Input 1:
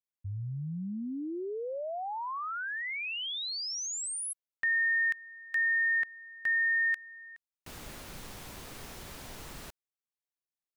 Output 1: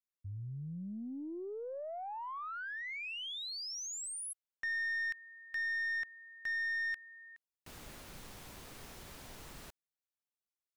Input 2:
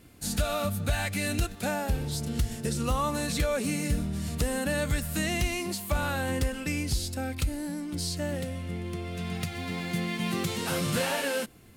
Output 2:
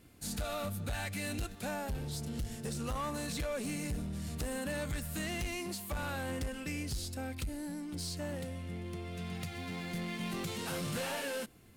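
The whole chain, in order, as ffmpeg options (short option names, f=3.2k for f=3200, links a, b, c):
-af "aeval=exprs='(tanh(20*val(0)+0.1)-tanh(0.1))/20':c=same,volume=-5.5dB"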